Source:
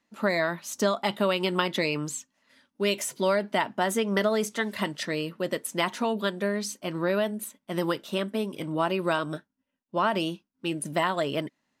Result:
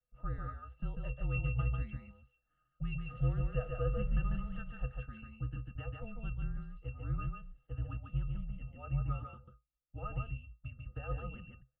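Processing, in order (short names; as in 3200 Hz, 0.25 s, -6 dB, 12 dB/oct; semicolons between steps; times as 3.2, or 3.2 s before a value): 3.04–4.61 zero-crossing step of -27 dBFS; dynamic EQ 780 Hz, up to -4 dB, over -34 dBFS, Q 0.74; octave resonator F#, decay 0.18 s; echo 0.144 s -4 dB; mistuned SSB -240 Hz 150–3100 Hz; gain +1.5 dB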